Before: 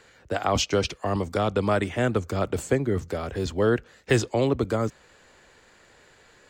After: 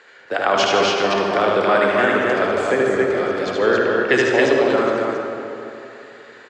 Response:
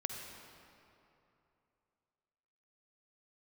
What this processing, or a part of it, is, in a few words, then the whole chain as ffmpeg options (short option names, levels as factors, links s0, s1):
station announcement: -filter_complex "[0:a]asettb=1/sr,asplit=3[s0][s1][s2];[s0]atrim=end=3.604[s3];[s1]atrim=start=3.6:end=4.16,asetpts=PTS-STARTPTS,afade=t=in:d=0.004:c=qsin,afade=t=out:st=0.556:d=0.004:c=qsin,lowpass=f=7400:w=0.5412,lowpass=f=7400:w=1.3066[s4];[s2]atrim=start=4.156[s5];[s3][s4]acrossfade=d=0.004:c1=hsin:c2=qsin[s6];[s6][s5]acrossfade=d=0.004:c1=qsin:c2=hsin,highpass=360,lowpass=4500,equalizer=f=1700:t=o:w=0.59:g=4.5,aecho=1:1:75.8|151.6|274.1:0.708|0.316|0.794[s7];[1:a]atrim=start_sample=2205[s8];[s7][s8]afir=irnorm=-1:irlink=0,volume=2"